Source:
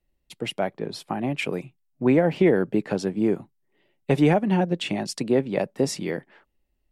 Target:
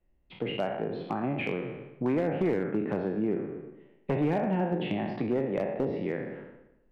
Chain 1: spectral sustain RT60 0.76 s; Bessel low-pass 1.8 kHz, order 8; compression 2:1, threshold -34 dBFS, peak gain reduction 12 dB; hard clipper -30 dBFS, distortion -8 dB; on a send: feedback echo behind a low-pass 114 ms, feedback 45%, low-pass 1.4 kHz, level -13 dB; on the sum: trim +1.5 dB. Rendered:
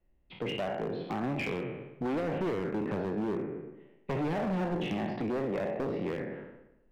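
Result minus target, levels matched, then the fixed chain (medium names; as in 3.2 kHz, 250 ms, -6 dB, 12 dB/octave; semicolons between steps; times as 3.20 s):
hard clipper: distortion +13 dB
spectral sustain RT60 0.76 s; Bessel low-pass 1.8 kHz, order 8; compression 2:1, threshold -34 dBFS, peak gain reduction 12 dB; hard clipper -22 dBFS, distortion -21 dB; on a send: feedback echo behind a low-pass 114 ms, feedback 45%, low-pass 1.4 kHz, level -13 dB; on the sum: trim +1.5 dB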